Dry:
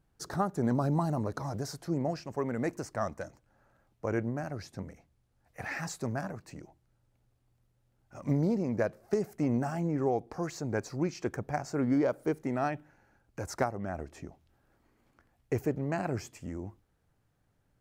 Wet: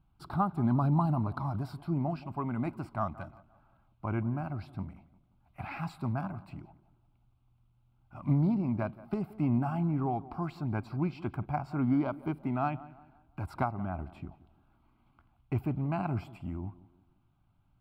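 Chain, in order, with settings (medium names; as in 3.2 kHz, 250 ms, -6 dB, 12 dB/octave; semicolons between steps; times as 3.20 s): tone controls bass +1 dB, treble -13 dB; static phaser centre 1.8 kHz, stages 6; on a send: tape echo 174 ms, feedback 44%, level -17 dB, low-pass 1.8 kHz; on the sum: trim +3.5 dB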